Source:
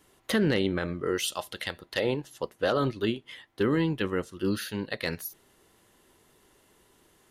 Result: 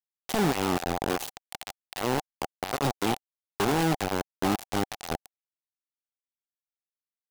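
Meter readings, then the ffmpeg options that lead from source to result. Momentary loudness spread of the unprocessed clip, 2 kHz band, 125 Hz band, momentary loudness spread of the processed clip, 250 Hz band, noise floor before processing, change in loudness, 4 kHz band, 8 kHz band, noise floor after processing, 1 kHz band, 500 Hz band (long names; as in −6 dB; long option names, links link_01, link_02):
10 LU, −1.0 dB, −0.5 dB, 14 LU, −1.0 dB, −64 dBFS, 0.0 dB, −1.0 dB, +2.5 dB, below −85 dBFS, +8.0 dB, −2.5 dB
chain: -filter_complex "[0:a]afftfilt=real='re*pow(10,8/40*sin(2*PI*(1.4*log(max(b,1)*sr/1024/100)/log(2)-(-0.66)*(pts-256)/sr)))':imag='im*pow(10,8/40*sin(2*PI*(1.4*log(max(b,1)*sr/1024/100)/log(2)-(-0.66)*(pts-256)/sr)))':win_size=1024:overlap=0.75,acrossover=split=110[link_01][link_02];[link_01]acompressor=threshold=-56dB:ratio=6[link_03];[link_02]alimiter=limit=-21.5dB:level=0:latency=1:release=33[link_04];[link_03][link_04]amix=inputs=2:normalize=0,acrossover=split=380|3000[link_05][link_06][link_07];[link_06]acompressor=threshold=-41dB:ratio=8[link_08];[link_05][link_08][link_07]amix=inputs=3:normalize=0,highshelf=frequency=3500:gain=-6,asplit=2[link_09][link_10];[link_10]adelay=80,highpass=300,lowpass=3400,asoftclip=type=hard:threshold=-31.5dB,volume=-12dB[link_11];[link_09][link_11]amix=inputs=2:normalize=0,acrusher=bits=4:mix=0:aa=0.000001,equalizer=frequency=770:width=3.7:gain=11,volume=4dB"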